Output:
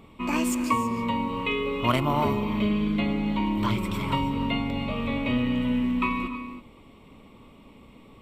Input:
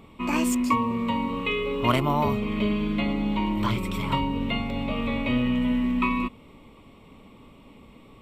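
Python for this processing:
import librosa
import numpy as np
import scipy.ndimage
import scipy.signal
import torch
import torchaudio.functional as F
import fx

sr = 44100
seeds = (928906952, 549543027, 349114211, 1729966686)

y = fx.rev_gated(x, sr, seeds[0], gate_ms=350, shape='rising', drr_db=10.0)
y = y * 10.0 ** (-1.0 / 20.0)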